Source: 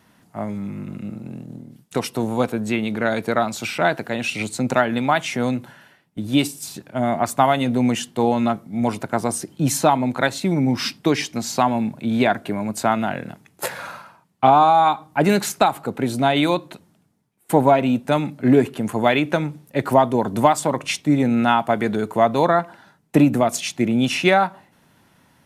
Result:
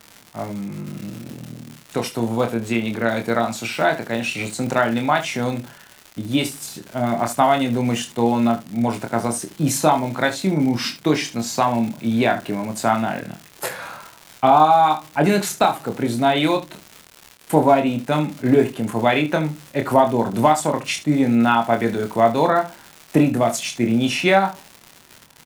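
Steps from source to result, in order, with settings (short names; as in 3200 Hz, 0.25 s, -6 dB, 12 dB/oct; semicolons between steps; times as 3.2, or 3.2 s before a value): crackle 170/s -27 dBFS; on a send: early reflections 26 ms -5.5 dB, 73 ms -14 dB; on the sum: gain -1 dB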